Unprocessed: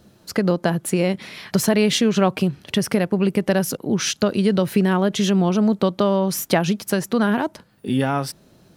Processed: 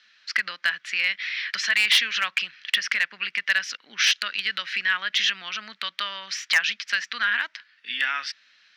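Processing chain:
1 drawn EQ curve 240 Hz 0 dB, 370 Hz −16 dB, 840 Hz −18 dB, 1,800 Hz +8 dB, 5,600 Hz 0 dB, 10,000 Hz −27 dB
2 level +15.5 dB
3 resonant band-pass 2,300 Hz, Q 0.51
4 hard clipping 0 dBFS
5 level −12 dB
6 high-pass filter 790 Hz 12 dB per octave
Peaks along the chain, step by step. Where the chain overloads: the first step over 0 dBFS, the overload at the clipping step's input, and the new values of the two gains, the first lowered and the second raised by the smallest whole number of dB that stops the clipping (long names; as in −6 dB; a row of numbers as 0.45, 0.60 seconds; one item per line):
−3.0, +12.5, +10.0, 0.0, −12.0, −8.0 dBFS
step 2, 10.0 dB
step 2 +5.5 dB, step 5 −2 dB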